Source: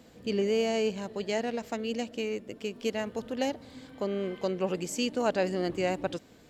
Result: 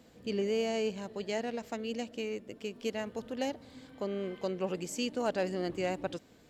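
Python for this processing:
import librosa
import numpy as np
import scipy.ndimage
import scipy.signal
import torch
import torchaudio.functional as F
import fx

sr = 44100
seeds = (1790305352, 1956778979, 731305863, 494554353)

y = np.clip(x, -10.0 ** (-18.5 / 20.0), 10.0 ** (-18.5 / 20.0))
y = y * 10.0 ** (-4.0 / 20.0)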